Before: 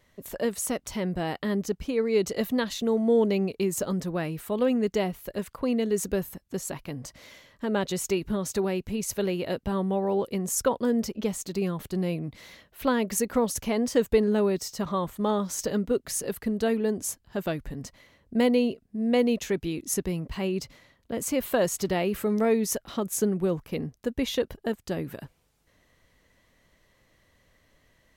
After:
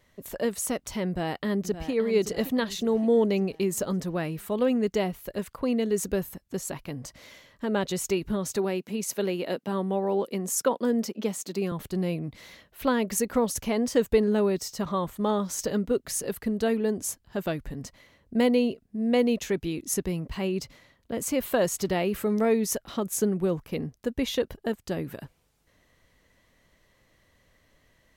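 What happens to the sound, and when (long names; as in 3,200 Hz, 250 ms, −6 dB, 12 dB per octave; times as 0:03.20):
0:01.07–0:01.92: delay throw 570 ms, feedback 50%, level −11 dB
0:08.56–0:11.72: high-pass filter 180 Hz 24 dB per octave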